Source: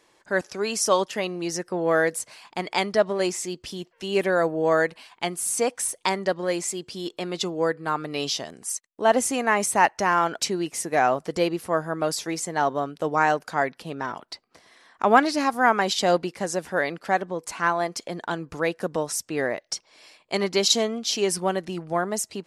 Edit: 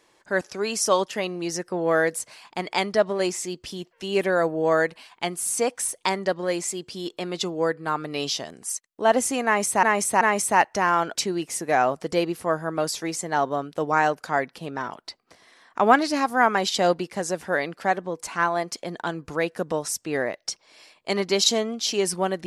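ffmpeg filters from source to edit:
-filter_complex "[0:a]asplit=3[a][b][c];[a]atrim=end=9.832[d];[b]atrim=start=9.448:end=9.832[e];[c]atrim=start=9.448[f];[d][e]acrossfade=d=0.004:c1=hsin:c2=hsin[g];[g][f]acrossfade=d=0.004:c1=hsin:c2=hsin"

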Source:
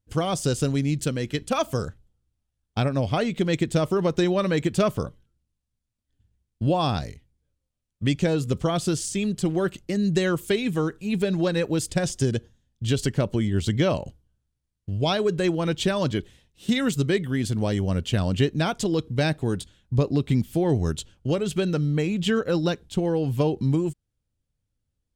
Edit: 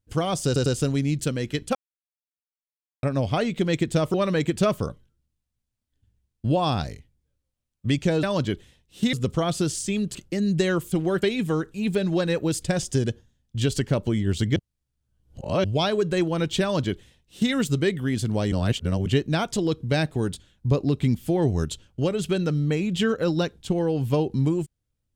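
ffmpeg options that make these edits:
-filter_complex "[0:a]asplit=15[a][b][c][d][e][f][g][h][i][j][k][l][m][n][o];[a]atrim=end=0.562[p];[b]atrim=start=0.458:end=0.562[q];[c]atrim=start=0.458:end=1.55,asetpts=PTS-STARTPTS,afade=t=out:st=1.088:d=0.004:c=hsin[r];[d]atrim=start=1.55:end=2.83,asetpts=PTS-STARTPTS,volume=0[s];[e]atrim=start=2.83:end=3.942,asetpts=PTS-STARTPTS,afade=t=in:d=0.004:c=hsin[t];[f]atrim=start=4.308:end=8.402[u];[g]atrim=start=15.888:end=16.792[v];[h]atrim=start=8.398:end=9.422[w];[i]atrim=start=9.718:end=10.492[x];[j]atrim=start=9.418:end=9.722[y];[k]atrim=start=10.488:end=13.832[z];[l]atrim=start=13.828:end=14.912,asetpts=PTS-STARTPTS,areverse[aa];[m]atrim=start=14.908:end=17.792[ab];[n]atrim=start=17.788:end=18.332,asetpts=PTS-STARTPTS,areverse[ac];[o]atrim=start=18.328[ad];[p][q]acrossfade=d=0.004:c1=hsin:c2=hsin[ae];[r][s][t]concat=n=3:v=0:a=1[af];[ae][af]acrossfade=d=0.004:c1=hsin:c2=hsin[ag];[ag][u]acrossfade=d=0.004:c1=hsin:c2=hsin[ah];[ah][v]acrossfade=d=0.004:c1=hsin:c2=hsin[ai];[ai][w]acrossfade=d=0.004:c1=hsin:c2=hsin[aj];[aj][x]acrossfade=d=0.004:c1=hsin:c2=hsin[ak];[ak][y]acrossfade=d=0.004:c1=hsin:c2=hsin[al];[al][z]acrossfade=d=0.004:c1=hsin:c2=hsin[am];[am][aa]acrossfade=d=0.004:c1=hsin:c2=hsin[an];[an][ab]acrossfade=d=0.004:c1=hsin:c2=hsin[ao];[ao][ac]acrossfade=d=0.004:c1=hsin:c2=hsin[ap];[ap][ad]acrossfade=d=0.004:c1=hsin:c2=hsin"

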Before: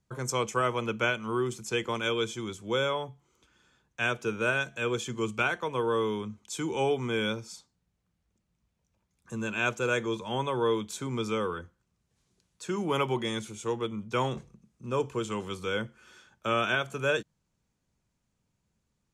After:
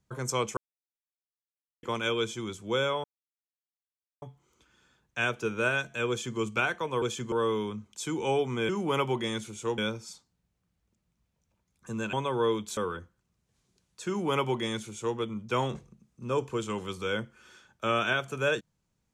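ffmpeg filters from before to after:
-filter_complex "[0:a]asplit=10[a][b][c][d][e][f][g][h][i][j];[a]atrim=end=0.57,asetpts=PTS-STARTPTS,afade=t=out:st=0.566:d=0.004:c=hsin[k];[b]atrim=start=0.57:end=1.83,asetpts=PTS-STARTPTS,volume=0[l];[c]atrim=start=1.83:end=3.04,asetpts=PTS-STARTPTS,afade=t=in:d=0.004:c=hsin,afade=t=out:st=1.206:d=0.004:c=hsin,apad=pad_dur=1.18[m];[d]atrim=start=3.04:end=5.842,asetpts=PTS-STARTPTS,afade=t=in:d=0.004:c=hsin[n];[e]atrim=start=4.908:end=5.212[o];[f]atrim=start=5.838:end=7.212[p];[g]atrim=start=12.698:end=13.792[q];[h]atrim=start=7.208:end=9.562[r];[i]atrim=start=10.348:end=10.992[s];[j]atrim=start=11.388[t];[k][l][m][n]concat=n=4:v=0:a=1[u];[u][o]acrossfade=d=0.004:c1=hsin:c2=hsin[v];[v][p]acrossfade=d=0.004:c1=hsin:c2=hsin[w];[w][q]acrossfade=d=0.004:c1=hsin:c2=hsin[x];[x][r]acrossfade=d=0.004:c1=hsin:c2=hsin[y];[y][s]acrossfade=d=0.004:c1=hsin:c2=hsin[z];[z][t]acrossfade=d=0.004:c1=hsin:c2=hsin"

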